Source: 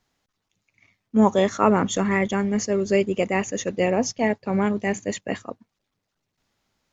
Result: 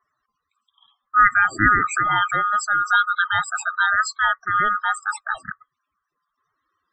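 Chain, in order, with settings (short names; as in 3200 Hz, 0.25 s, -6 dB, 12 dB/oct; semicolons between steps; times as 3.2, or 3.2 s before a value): band-swap scrambler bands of 1000 Hz; loudest bins only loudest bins 32; gain +2 dB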